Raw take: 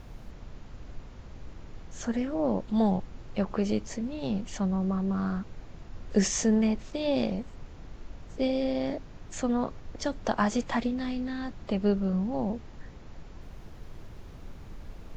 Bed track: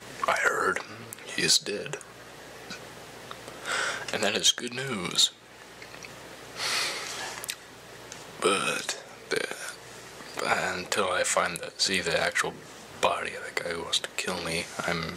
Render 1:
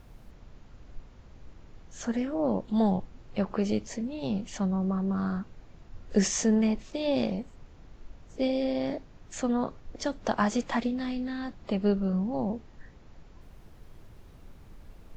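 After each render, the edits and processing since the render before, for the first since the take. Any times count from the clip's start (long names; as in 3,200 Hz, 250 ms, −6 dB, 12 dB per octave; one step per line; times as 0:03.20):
noise reduction from a noise print 6 dB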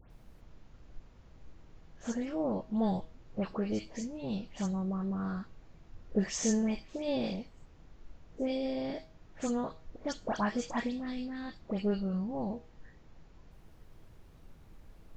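tuned comb filter 160 Hz, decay 0.44 s, harmonics all, mix 50%
all-pass dispersion highs, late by 106 ms, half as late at 2,300 Hz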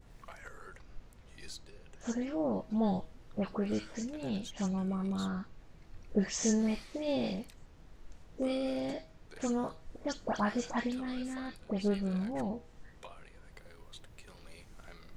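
mix in bed track −26 dB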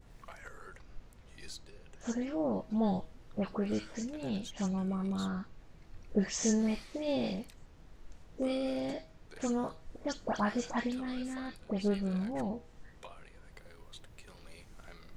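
no processing that can be heard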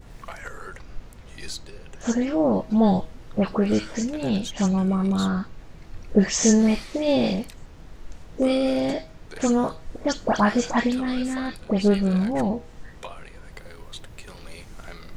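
level +12 dB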